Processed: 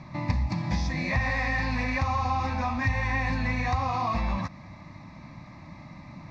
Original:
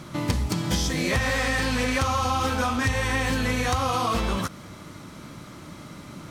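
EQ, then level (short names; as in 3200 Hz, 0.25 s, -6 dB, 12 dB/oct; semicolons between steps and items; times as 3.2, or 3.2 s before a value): LPF 3000 Hz 12 dB/oct; fixed phaser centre 2100 Hz, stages 8; 0.0 dB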